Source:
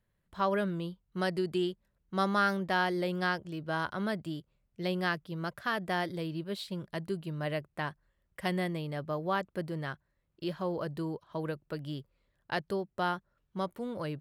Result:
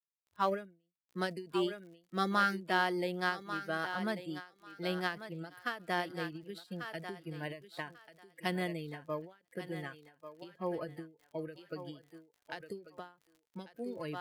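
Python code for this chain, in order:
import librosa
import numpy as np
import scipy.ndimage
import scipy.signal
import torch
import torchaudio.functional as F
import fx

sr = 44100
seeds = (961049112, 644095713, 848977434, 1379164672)

p1 = fx.law_mismatch(x, sr, coded='A')
p2 = fx.noise_reduce_blind(p1, sr, reduce_db=22)
p3 = scipy.signal.sosfilt(scipy.signal.butter(2, 170.0, 'highpass', fs=sr, output='sos'), p2)
p4 = fx.dmg_crackle(p3, sr, seeds[0], per_s=54.0, level_db=-52.0)
p5 = p4 + fx.echo_thinned(p4, sr, ms=1142, feedback_pct=18, hz=460.0, wet_db=-9.0, dry=0)
y = fx.end_taper(p5, sr, db_per_s=160.0)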